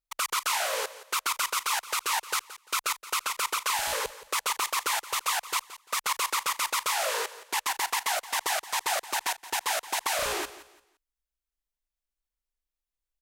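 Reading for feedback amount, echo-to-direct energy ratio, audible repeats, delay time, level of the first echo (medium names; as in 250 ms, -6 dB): 28%, -15.5 dB, 2, 172 ms, -16.0 dB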